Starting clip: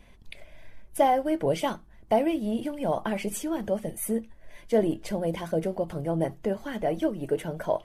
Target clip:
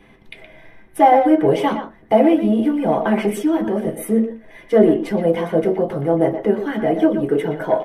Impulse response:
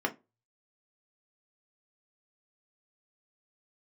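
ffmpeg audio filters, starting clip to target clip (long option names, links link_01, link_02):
-filter_complex "[0:a]aeval=exprs='0.355*(cos(1*acos(clip(val(0)/0.355,-1,1)))-cos(1*PI/2))+0.0158*(cos(5*acos(clip(val(0)/0.355,-1,1)))-cos(5*PI/2))':channel_layout=same,asplit=2[link_01][link_02];[link_02]adelay=120,highpass=300,lowpass=3400,asoftclip=type=hard:threshold=-16.5dB,volume=-8dB[link_03];[link_01][link_03]amix=inputs=2:normalize=0[link_04];[1:a]atrim=start_sample=2205[link_05];[link_04][link_05]afir=irnorm=-1:irlink=0"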